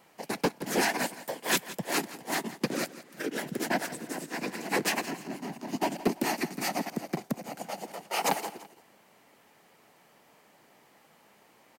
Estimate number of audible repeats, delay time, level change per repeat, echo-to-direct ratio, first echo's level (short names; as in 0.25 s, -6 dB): 2, 0.168 s, -8.0 dB, -15.5 dB, -16.0 dB